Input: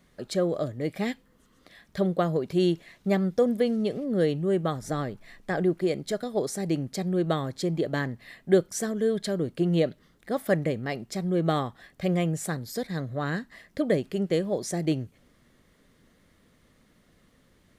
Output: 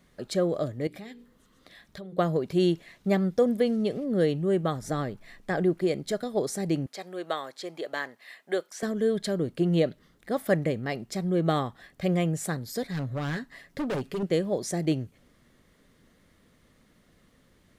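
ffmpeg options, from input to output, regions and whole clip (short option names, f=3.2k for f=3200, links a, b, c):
-filter_complex "[0:a]asettb=1/sr,asplit=3[a][b][c];[a]atrim=end=0.874[d];[b]atrim=start=0.87:end=2.18,asetpts=PTS-STARTPTS,afade=t=in:d=0.004:c=qsin,afade=t=out:st=1.306:d=0.004:c=qsin,equalizer=f=3.8k:w=6.4:g=4,bandreject=f=60:t=h:w=6,bandreject=f=120:t=h:w=6,bandreject=f=180:t=h:w=6,bandreject=f=240:t=h:w=6,bandreject=f=300:t=h:w=6,bandreject=f=360:t=h:w=6,bandreject=f=420:t=h:w=6,bandreject=f=480:t=h:w=6,acompressor=threshold=-41dB:ratio=4:attack=3.2:release=140:knee=1:detection=peak[e];[c]atrim=start=2.176[f];[d][e]acrossfade=d=0.004:c1=hsin:c2=qsin[g];[g][f]acrossfade=d=0.004:c1=qsin:c2=hsin,asettb=1/sr,asplit=3[h][i][j];[h]atrim=end=6.864[k];[i]atrim=start=6.86:end=8.83,asetpts=PTS-STARTPTS,afade=t=in:d=0.004:c=qsin,afade=t=out:st=1.966:d=0.004:c=qsin,highpass=620,acrossover=split=4400[l][m];[m]acompressor=threshold=-45dB:ratio=4:attack=1:release=60[n];[l][n]amix=inputs=2:normalize=0[o];[j]atrim=start=8.826[p];[k][o]acrossfade=d=0.004:c1=hsin:c2=qsin[q];[q][p]acrossfade=d=0.004:c1=qsin:c2=hsin,asettb=1/sr,asplit=3[r][s][t];[r]atrim=end=12.824[u];[s]atrim=start=12.82:end=14.23,asetpts=PTS-STARTPTS,afade=t=in:d=0.004:c=qsin,afade=t=out:st=1.406:d=0.004:c=qsin,aecho=1:1:7.2:0.44,atrim=end_sample=62181,asoftclip=type=hard:threshold=-27dB[v];[t]atrim=start=14.226[w];[u][v]acrossfade=d=0.004:c1=hsin:c2=qsin[x];[x][w]acrossfade=d=0.004:c1=qsin:c2=hsin"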